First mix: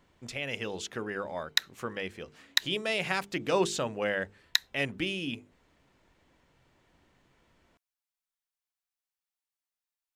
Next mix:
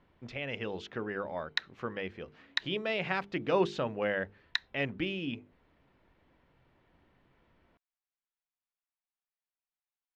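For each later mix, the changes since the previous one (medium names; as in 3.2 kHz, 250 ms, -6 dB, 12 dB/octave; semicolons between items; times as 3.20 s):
master: add distance through air 260 m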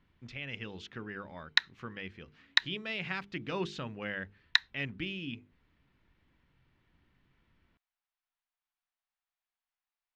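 speech: add peaking EQ 600 Hz -12.5 dB 1.8 oct; background +6.5 dB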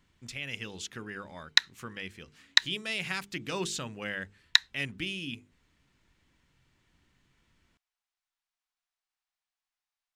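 background: add distance through air 74 m; master: remove distance through air 260 m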